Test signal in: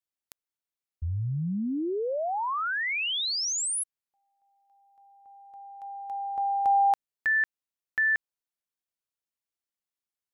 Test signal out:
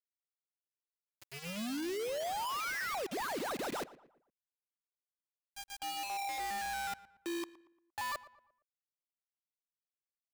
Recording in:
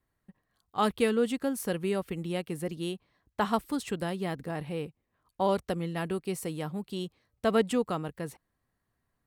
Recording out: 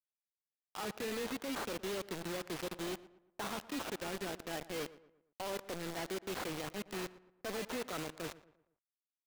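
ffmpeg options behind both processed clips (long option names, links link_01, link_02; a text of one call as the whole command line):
ffmpeg -i in.wav -filter_complex "[0:a]highshelf=frequency=4200:gain=5,tremolo=f=7.5:d=0.35,alimiter=level_in=0.5dB:limit=-24dB:level=0:latency=1:release=16,volume=-0.5dB,areverse,acompressor=threshold=-39dB:ratio=6:attack=47:release=58:knee=6:detection=peak,areverse,acrusher=samples=16:mix=1:aa=0.000001:lfo=1:lforange=9.6:lforate=0.31,aeval=exprs='0.0266*(abs(mod(val(0)/0.0266+3,4)-2)-1)':channel_layout=same,acrossover=split=240 6700:gain=0.251 1 0.112[link_01][link_02][link_03];[link_01][link_02][link_03]amix=inputs=3:normalize=0,asoftclip=type=hard:threshold=-38dB,acrusher=bits=6:mix=0:aa=0.000001,asplit=2[link_04][link_05];[link_05]adelay=116,lowpass=frequency=2300:poles=1,volume=-17dB,asplit=2[link_06][link_07];[link_07]adelay=116,lowpass=frequency=2300:poles=1,volume=0.42,asplit=2[link_08][link_09];[link_09]adelay=116,lowpass=frequency=2300:poles=1,volume=0.42,asplit=2[link_10][link_11];[link_11]adelay=116,lowpass=frequency=2300:poles=1,volume=0.42[link_12];[link_04][link_06][link_08][link_10][link_12]amix=inputs=5:normalize=0,volume=1dB" out.wav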